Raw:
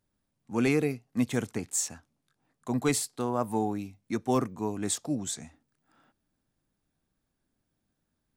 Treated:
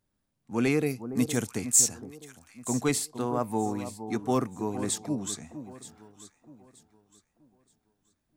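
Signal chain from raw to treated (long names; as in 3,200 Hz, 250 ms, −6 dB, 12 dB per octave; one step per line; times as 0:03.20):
0:00.86–0:02.71: bass and treble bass +1 dB, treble +10 dB
delay that swaps between a low-pass and a high-pass 463 ms, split 1,100 Hz, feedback 53%, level −10.5 dB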